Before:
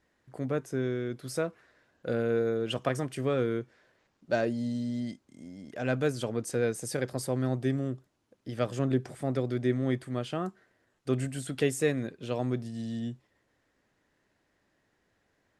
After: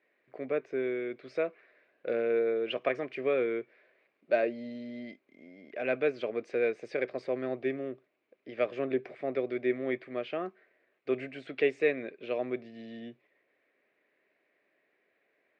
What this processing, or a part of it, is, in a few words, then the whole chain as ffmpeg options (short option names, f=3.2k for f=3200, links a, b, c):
phone earpiece: -af "highpass=390,equalizer=f=400:t=q:w=4:g=5,equalizer=f=620:t=q:w=4:g=4,equalizer=f=890:t=q:w=4:g=-9,equalizer=f=1.4k:t=q:w=4:g=-4,equalizer=f=2.3k:t=q:w=4:g=10,equalizer=f=3.2k:t=q:w=4:g=-5,lowpass=f=3.4k:w=0.5412,lowpass=f=3.4k:w=1.3066"